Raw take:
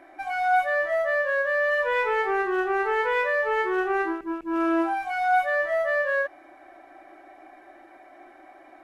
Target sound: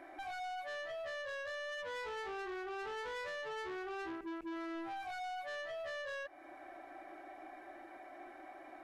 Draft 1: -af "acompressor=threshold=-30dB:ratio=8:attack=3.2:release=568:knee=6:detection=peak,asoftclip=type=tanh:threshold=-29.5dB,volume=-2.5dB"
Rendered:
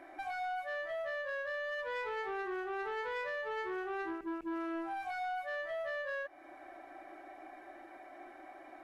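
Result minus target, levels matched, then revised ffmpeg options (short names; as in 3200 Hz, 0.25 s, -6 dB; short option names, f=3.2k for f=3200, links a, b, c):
soft clip: distortion -9 dB
-af "acompressor=threshold=-30dB:ratio=8:attack=3.2:release=568:knee=6:detection=peak,asoftclip=type=tanh:threshold=-37.5dB,volume=-2.5dB"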